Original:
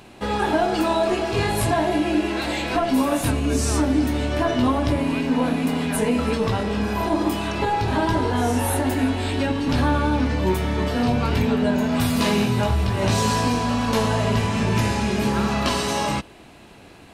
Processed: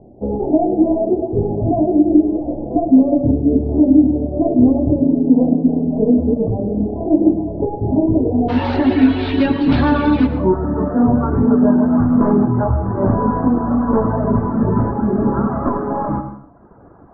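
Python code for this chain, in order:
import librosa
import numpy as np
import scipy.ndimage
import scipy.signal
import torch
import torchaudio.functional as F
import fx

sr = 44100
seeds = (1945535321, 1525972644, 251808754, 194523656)

y = fx.tracing_dist(x, sr, depth_ms=0.23)
y = fx.steep_lowpass(y, sr, hz=fx.steps((0.0, 710.0), (8.48, 4300.0), (10.26, 1400.0)), slope=48)
y = fx.dereverb_blind(y, sr, rt60_s=0.9)
y = fx.dynamic_eq(y, sr, hz=280.0, q=1.5, threshold_db=-35.0, ratio=4.0, max_db=7)
y = fx.rev_plate(y, sr, seeds[0], rt60_s=0.71, hf_ratio=0.65, predelay_ms=80, drr_db=9.0)
y = y * 10.0 ** (4.5 / 20.0)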